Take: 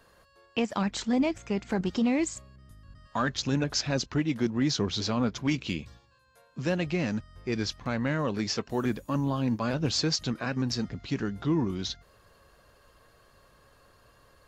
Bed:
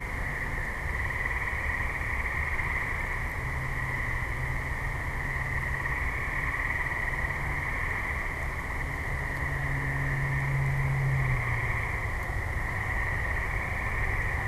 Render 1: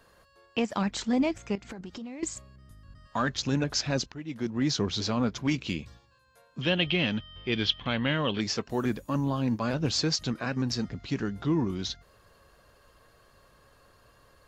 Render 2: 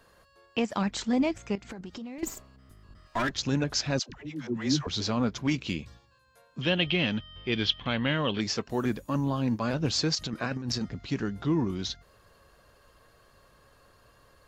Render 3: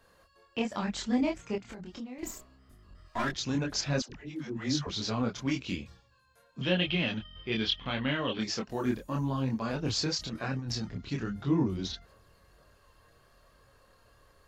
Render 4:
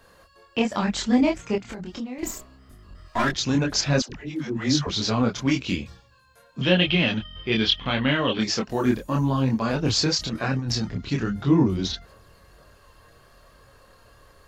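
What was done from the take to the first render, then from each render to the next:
1.55–2.23 s: compression 8:1, threshold -37 dBFS; 4.12–4.69 s: fade in, from -18.5 dB; 6.61–8.41 s: resonant low-pass 3.2 kHz, resonance Q 15
2.18–3.31 s: comb filter that takes the minimum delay 3 ms; 3.99–4.87 s: phase dispersion lows, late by 107 ms, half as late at 520 Hz; 10.15–10.81 s: compressor with a negative ratio -31 dBFS, ratio -0.5
chorus voices 4, 0.94 Hz, delay 25 ms, depth 3 ms
trim +8.5 dB

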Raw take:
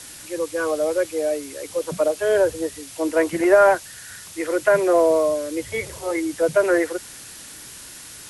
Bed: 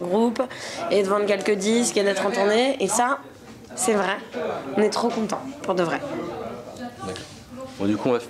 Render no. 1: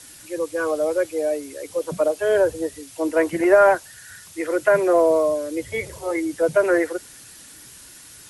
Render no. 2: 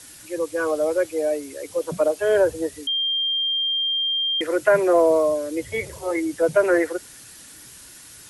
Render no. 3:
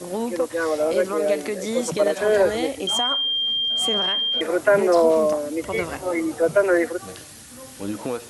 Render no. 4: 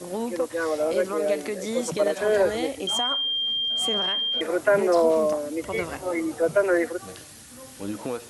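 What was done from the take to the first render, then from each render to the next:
noise reduction 6 dB, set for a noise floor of -40 dBFS
2.87–4.41 s: bleep 3.19 kHz -20 dBFS
add bed -6.5 dB
trim -3 dB

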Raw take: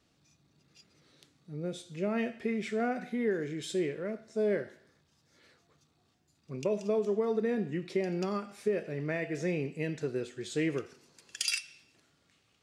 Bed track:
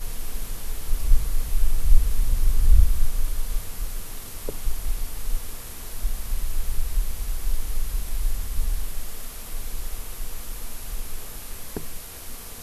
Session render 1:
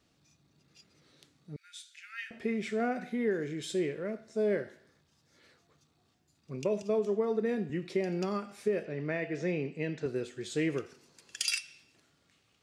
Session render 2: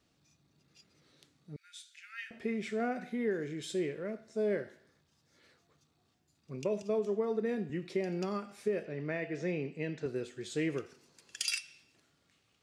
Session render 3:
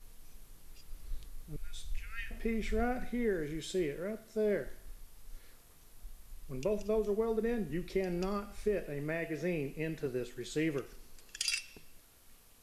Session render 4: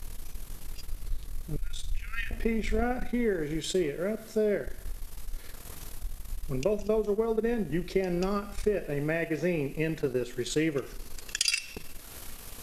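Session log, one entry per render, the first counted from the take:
1.56–2.31 s: steep high-pass 1.4 kHz 96 dB/octave; 6.82–7.70 s: three bands expanded up and down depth 70%; 8.85–10.06 s: band-pass 120–5100 Hz
trim -2.5 dB
add bed track -23.5 dB
transient shaper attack +6 dB, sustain -11 dB; level flattener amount 50%

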